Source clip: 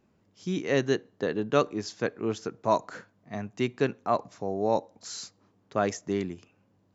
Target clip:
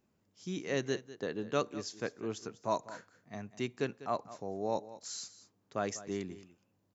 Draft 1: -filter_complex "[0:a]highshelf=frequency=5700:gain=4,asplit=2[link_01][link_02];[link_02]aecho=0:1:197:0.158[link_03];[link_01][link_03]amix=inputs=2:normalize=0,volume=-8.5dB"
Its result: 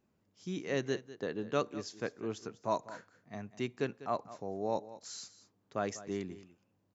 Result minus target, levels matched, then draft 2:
8,000 Hz band −3.5 dB
-filter_complex "[0:a]highshelf=frequency=5700:gain=10.5,asplit=2[link_01][link_02];[link_02]aecho=0:1:197:0.158[link_03];[link_01][link_03]amix=inputs=2:normalize=0,volume=-8.5dB"

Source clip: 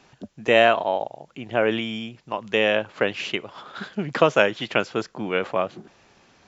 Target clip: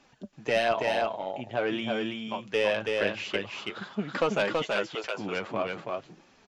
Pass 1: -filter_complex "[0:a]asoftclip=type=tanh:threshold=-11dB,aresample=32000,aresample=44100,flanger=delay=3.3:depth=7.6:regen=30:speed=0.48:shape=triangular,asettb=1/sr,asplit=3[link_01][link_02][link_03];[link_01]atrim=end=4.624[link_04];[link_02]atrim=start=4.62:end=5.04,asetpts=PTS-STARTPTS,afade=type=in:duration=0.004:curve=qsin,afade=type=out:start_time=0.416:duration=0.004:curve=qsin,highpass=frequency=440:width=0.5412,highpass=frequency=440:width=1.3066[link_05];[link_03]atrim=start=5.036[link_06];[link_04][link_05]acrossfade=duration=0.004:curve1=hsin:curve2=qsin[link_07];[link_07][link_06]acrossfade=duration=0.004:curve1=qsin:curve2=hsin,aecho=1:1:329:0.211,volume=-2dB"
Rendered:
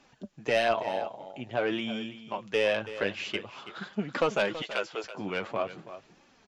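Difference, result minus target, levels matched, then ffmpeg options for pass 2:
echo-to-direct −10.5 dB
-filter_complex "[0:a]asoftclip=type=tanh:threshold=-11dB,aresample=32000,aresample=44100,flanger=delay=3.3:depth=7.6:regen=30:speed=0.48:shape=triangular,asettb=1/sr,asplit=3[link_01][link_02][link_03];[link_01]atrim=end=4.624[link_04];[link_02]atrim=start=4.62:end=5.04,asetpts=PTS-STARTPTS,afade=type=in:duration=0.004:curve=qsin,afade=type=out:start_time=0.416:duration=0.004:curve=qsin,highpass=frequency=440:width=0.5412,highpass=frequency=440:width=1.3066[link_05];[link_03]atrim=start=5.036[link_06];[link_04][link_05]acrossfade=duration=0.004:curve1=hsin:curve2=qsin[link_07];[link_07][link_06]acrossfade=duration=0.004:curve1=qsin:curve2=hsin,aecho=1:1:329:0.708,volume=-2dB"

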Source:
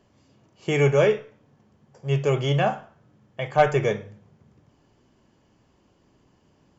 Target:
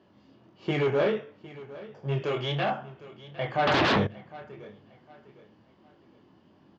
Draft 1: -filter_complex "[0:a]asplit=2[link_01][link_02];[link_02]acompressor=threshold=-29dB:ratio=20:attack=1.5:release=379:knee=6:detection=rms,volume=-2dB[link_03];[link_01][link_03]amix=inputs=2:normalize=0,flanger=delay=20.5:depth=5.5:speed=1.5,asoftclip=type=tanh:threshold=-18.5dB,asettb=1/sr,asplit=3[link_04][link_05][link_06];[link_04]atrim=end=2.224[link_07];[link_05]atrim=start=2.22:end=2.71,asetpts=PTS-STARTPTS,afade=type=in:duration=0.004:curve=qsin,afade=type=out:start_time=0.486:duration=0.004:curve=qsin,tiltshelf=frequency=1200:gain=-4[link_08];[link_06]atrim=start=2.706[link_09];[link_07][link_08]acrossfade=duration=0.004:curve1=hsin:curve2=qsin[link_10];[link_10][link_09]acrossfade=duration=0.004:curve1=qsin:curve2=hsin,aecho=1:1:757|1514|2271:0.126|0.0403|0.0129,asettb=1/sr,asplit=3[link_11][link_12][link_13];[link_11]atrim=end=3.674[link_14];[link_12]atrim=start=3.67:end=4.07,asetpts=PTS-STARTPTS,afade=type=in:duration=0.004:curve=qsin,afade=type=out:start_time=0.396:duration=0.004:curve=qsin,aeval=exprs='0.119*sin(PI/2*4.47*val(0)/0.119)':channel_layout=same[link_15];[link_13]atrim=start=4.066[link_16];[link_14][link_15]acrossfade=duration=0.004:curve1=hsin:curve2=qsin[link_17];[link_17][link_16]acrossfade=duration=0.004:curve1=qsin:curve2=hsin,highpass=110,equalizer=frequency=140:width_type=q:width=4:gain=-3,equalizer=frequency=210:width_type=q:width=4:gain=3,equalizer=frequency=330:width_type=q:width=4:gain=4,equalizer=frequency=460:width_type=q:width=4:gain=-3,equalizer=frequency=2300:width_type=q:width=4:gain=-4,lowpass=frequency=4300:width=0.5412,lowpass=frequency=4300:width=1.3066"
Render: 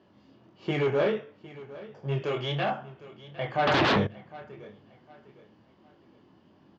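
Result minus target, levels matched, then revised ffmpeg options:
downward compressor: peak gain reduction +6 dB
-filter_complex "[0:a]asplit=2[link_01][link_02];[link_02]acompressor=threshold=-22.5dB:ratio=20:attack=1.5:release=379:knee=6:detection=rms,volume=-2dB[link_03];[link_01][link_03]amix=inputs=2:normalize=0,flanger=delay=20.5:depth=5.5:speed=1.5,asoftclip=type=tanh:threshold=-18.5dB,asettb=1/sr,asplit=3[link_04][link_05][link_06];[link_04]atrim=end=2.224[link_07];[link_05]atrim=start=2.22:end=2.71,asetpts=PTS-STARTPTS,afade=type=in:duration=0.004:curve=qsin,afade=type=out:start_time=0.486:duration=0.004:curve=qsin,tiltshelf=frequency=1200:gain=-4[link_08];[link_06]atrim=start=2.706[link_09];[link_07][link_08]acrossfade=duration=0.004:curve1=hsin:curve2=qsin[link_10];[link_10][link_09]acrossfade=duration=0.004:curve1=qsin:curve2=hsin,aecho=1:1:757|1514|2271:0.126|0.0403|0.0129,asettb=1/sr,asplit=3[link_11][link_12][link_13];[link_11]atrim=end=3.674[link_14];[link_12]atrim=start=3.67:end=4.07,asetpts=PTS-STARTPTS,afade=type=in:duration=0.004:curve=qsin,afade=type=out:start_time=0.396:duration=0.004:curve=qsin,aeval=exprs='0.119*sin(PI/2*4.47*val(0)/0.119)':channel_layout=same[link_15];[link_13]atrim=start=4.066[link_16];[link_14][link_15]acrossfade=duration=0.004:curve1=hsin:curve2=qsin[link_17];[link_17][link_16]acrossfade=duration=0.004:curve1=qsin:curve2=hsin,highpass=110,equalizer=frequency=140:width_type=q:width=4:gain=-3,equalizer=frequency=210:width_type=q:width=4:gain=3,equalizer=frequency=330:width_type=q:width=4:gain=4,equalizer=frequency=460:width_type=q:width=4:gain=-3,equalizer=frequency=2300:width_type=q:width=4:gain=-4,lowpass=frequency=4300:width=0.5412,lowpass=frequency=4300:width=1.3066"

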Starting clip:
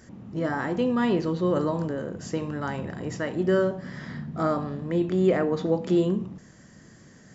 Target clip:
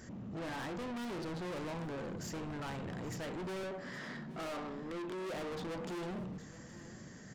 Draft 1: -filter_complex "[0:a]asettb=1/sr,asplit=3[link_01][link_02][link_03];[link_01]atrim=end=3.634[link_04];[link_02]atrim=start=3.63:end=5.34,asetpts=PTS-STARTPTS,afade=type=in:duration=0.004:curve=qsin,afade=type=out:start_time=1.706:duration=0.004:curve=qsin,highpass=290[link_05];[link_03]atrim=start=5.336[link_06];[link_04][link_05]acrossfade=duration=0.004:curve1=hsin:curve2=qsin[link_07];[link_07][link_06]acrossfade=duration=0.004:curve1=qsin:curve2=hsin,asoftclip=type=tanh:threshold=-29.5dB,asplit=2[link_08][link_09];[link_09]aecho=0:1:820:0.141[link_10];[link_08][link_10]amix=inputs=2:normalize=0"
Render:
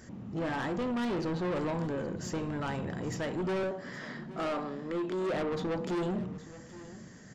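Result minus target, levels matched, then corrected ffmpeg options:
soft clipping: distortion −4 dB
-filter_complex "[0:a]asettb=1/sr,asplit=3[link_01][link_02][link_03];[link_01]atrim=end=3.634[link_04];[link_02]atrim=start=3.63:end=5.34,asetpts=PTS-STARTPTS,afade=type=in:duration=0.004:curve=qsin,afade=type=out:start_time=1.706:duration=0.004:curve=qsin,highpass=290[link_05];[link_03]atrim=start=5.336[link_06];[link_04][link_05]acrossfade=duration=0.004:curve1=hsin:curve2=qsin[link_07];[link_07][link_06]acrossfade=duration=0.004:curve1=qsin:curve2=hsin,asoftclip=type=tanh:threshold=-39.5dB,asplit=2[link_08][link_09];[link_09]aecho=0:1:820:0.141[link_10];[link_08][link_10]amix=inputs=2:normalize=0"

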